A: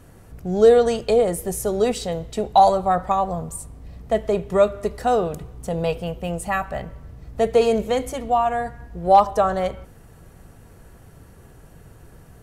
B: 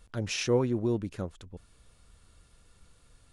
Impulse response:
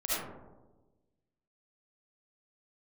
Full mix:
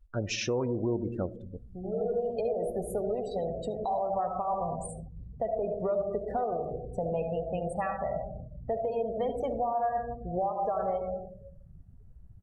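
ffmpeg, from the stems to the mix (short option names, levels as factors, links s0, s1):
-filter_complex "[0:a]acompressor=threshold=0.0447:ratio=4,adynamicequalizer=threshold=0.00355:dfrequency=3600:dqfactor=0.7:tfrequency=3600:tqfactor=0.7:attack=5:release=100:ratio=0.375:range=1.5:mode=cutabove:tftype=highshelf,adelay=1300,volume=0.422,asplit=2[s0][s1];[s1]volume=0.355[s2];[1:a]volume=1.12,asplit=3[s3][s4][s5];[s4]volume=0.106[s6];[s5]apad=whole_len=605243[s7];[s0][s7]sidechaincompress=threshold=0.00891:ratio=8:attack=16:release=1410[s8];[2:a]atrim=start_sample=2205[s9];[s2][s6]amix=inputs=2:normalize=0[s10];[s10][s9]afir=irnorm=-1:irlink=0[s11];[s8][s3][s11]amix=inputs=3:normalize=0,afftdn=nr=29:nf=-39,equalizer=f=680:t=o:w=1.4:g=6.5,alimiter=limit=0.0841:level=0:latency=1:release=168"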